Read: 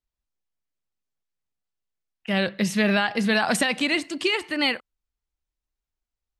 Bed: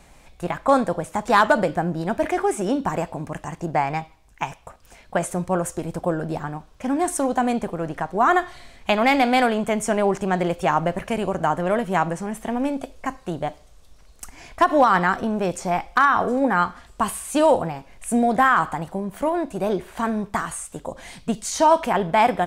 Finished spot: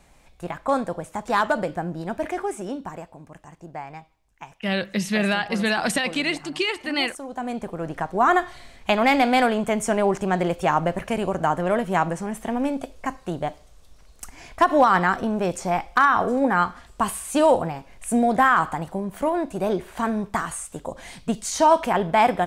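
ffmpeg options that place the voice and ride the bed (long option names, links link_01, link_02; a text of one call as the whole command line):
ffmpeg -i stem1.wav -i stem2.wav -filter_complex "[0:a]adelay=2350,volume=-1dB[link_01];[1:a]volume=8dB,afade=type=out:start_time=2.32:duration=0.76:silence=0.375837,afade=type=in:start_time=7.26:duration=0.77:silence=0.223872[link_02];[link_01][link_02]amix=inputs=2:normalize=0" out.wav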